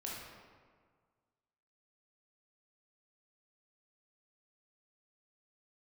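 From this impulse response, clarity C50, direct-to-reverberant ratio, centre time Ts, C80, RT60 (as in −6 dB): −1.0 dB, −4.5 dB, 93 ms, 2.0 dB, 1.7 s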